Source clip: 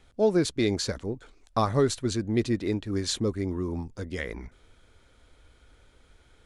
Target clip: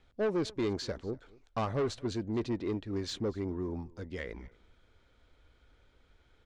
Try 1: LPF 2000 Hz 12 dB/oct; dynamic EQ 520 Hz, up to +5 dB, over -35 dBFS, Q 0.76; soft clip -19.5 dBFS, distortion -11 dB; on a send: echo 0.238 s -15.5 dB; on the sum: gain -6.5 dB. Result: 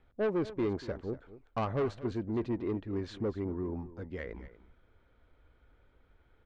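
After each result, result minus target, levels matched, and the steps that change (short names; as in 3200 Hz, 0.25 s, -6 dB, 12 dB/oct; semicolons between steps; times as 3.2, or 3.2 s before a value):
4000 Hz band -9.5 dB; echo-to-direct +8 dB
change: LPF 5000 Hz 12 dB/oct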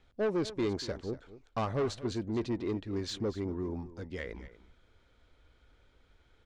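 echo-to-direct +8 dB
change: echo 0.238 s -23.5 dB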